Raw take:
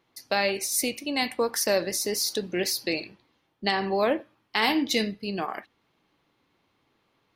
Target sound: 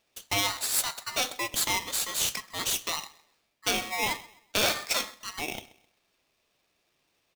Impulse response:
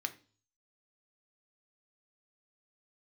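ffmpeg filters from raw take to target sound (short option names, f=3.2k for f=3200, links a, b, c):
-filter_complex "[0:a]highpass=790,asplit=2[a][b];[b]adelay=130,lowpass=f=3.1k:p=1,volume=-19dB,asplit=2[c][d];[d]adelay=130,lowpass=f=3.1k:p=1,volume=0.34,asplit=2[e][f];[f]adelay=130,lowpass=f=3.1k:p=1,volume=0.34[g];[c][e][g]amix=inputs=3:normalize=0[h];[a][h]amix=inputs=2:normalize=0,aeval=exprs='val(0)*sgn(sin(2*PI*1500*n/s))':c=same"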